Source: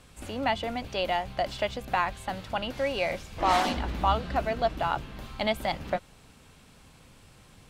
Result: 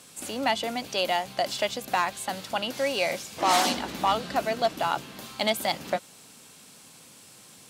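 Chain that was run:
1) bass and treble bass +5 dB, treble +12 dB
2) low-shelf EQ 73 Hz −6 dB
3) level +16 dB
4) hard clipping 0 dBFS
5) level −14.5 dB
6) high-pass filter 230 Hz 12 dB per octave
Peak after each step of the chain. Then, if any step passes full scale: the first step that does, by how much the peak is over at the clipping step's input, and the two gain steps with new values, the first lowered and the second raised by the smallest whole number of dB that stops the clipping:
−10.0, −10.0, +6.0, 0.0, −14.5, −10.5 dBFS
step 3, 6.0 dB
step 3 +10 dB, step 5 −8.5 dB

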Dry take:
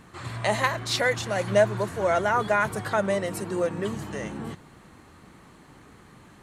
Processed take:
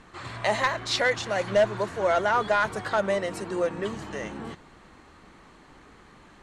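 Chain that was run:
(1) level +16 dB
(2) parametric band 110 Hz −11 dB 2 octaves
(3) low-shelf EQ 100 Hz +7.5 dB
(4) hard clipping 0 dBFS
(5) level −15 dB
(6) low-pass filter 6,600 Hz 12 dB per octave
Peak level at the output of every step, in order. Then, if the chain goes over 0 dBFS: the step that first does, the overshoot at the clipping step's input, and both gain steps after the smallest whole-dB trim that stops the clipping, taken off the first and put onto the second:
+8.0, +7.5, +7.5, 0.0, −15.0, −14.5 dBFS
step 1, 7.5 dB
step 1 +8 dB, step 5 −7 dB

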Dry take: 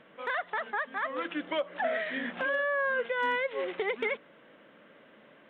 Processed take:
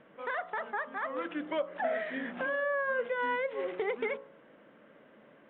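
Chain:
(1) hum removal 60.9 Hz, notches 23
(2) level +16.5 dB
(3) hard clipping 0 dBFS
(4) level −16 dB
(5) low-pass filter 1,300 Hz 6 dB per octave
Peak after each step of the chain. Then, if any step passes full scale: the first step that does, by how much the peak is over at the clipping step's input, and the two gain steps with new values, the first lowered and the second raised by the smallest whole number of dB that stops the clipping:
−20.0, −3.5, −3.5, −19.5, −21.0 dBFS
no step passes full scale

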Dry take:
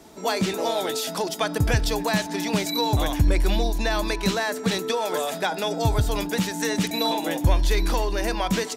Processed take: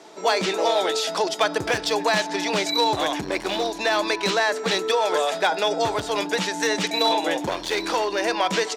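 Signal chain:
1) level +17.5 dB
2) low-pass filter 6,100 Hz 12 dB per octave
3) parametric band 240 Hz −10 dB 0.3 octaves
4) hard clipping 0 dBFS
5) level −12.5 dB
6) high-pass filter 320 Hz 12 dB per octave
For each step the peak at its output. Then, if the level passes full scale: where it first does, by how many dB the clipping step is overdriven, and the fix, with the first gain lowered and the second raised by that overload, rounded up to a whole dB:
+9.5, +9.5, +9.0, 0.0, −12.5, −8.5 dBFS
step 1, 9.0 dB
step 1 +8.5 dB, step 5 −3.5 dB

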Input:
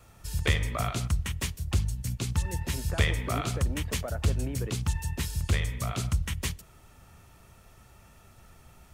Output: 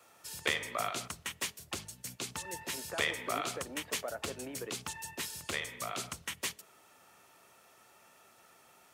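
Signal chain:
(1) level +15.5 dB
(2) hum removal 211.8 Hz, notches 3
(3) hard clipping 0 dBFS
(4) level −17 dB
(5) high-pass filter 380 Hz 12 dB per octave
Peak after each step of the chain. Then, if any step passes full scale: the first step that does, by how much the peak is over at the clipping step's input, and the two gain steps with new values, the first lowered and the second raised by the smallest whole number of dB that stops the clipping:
+4.5, +4.5, 0.0, −17.0, −15.5 dBFS
step 1, 4.5 dB
step 1 +10.5 dB, step 4 −12 dB

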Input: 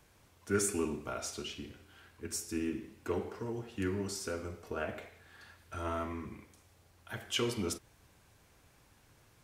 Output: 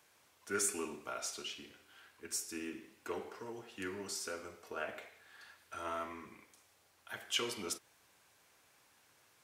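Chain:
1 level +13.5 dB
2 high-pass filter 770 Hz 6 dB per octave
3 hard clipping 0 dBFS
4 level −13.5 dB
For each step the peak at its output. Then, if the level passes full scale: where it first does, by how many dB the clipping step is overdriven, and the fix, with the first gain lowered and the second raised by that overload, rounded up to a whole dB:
−4.0, −4.5, −4.5, −18.0 dBFS
no step passes full scale

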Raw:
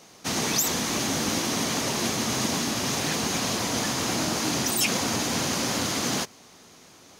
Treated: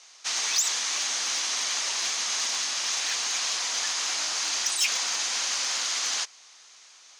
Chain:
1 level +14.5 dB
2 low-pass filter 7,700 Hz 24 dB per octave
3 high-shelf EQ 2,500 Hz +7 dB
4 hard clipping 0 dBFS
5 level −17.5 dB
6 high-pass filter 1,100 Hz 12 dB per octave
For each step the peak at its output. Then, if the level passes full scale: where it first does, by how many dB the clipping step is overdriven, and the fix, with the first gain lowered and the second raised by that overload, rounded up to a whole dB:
+3.5, +3.0, +7.5, 0.0, −17.5, −14.0 dBFS
step 1, 7.5 dB
step 1 +6.5 dB, step 5 −9.5 dB

